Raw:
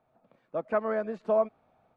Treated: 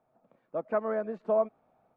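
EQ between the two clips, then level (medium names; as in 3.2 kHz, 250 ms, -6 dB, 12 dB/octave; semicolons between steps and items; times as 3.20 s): peaking EQ 75 Hz -5.5 dB 1 oct; bass shelf 130 Hz -4 dB; treble shelf 2.3 kHz -12 dB; 0.0 dB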